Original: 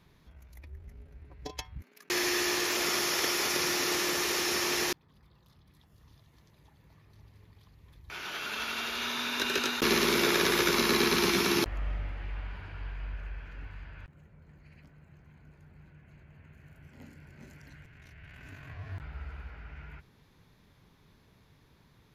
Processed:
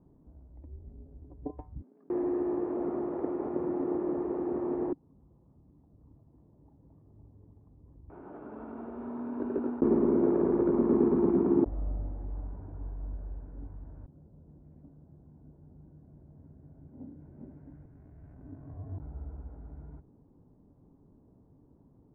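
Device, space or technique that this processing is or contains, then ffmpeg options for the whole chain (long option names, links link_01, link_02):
under water: -filter_complex "[0:a]lowpass=frequency=800:width=0.5412,lowpass=frequency=800:width=1.3066,equalizer=frequency=280:width_type=o:width=0.59:gain=10,asettb=1/sr,asplit=3[link_01][link_02][link_03];[link_01]atrim=end=17.204[link_04];[link_02]atrim=start=17.2:end=18.34,asetpts=PTS-STARTPTS,afade=type=in:duration=0.004:curve=qsin,afade=type=out:start_time=1.136:duration=0.004:curve=qsin,highshelf=frequency=2100:gain=10.5[link_05];[link_03]atrim=start=18.336[link_06];[link_04][link_05]acrossfade=duration=0.004:curve1=hsin:curve2=qsin[link_07];[link_07][link_06]acrossfade=duration=0.004:curve1=qsin:curve2=hsin"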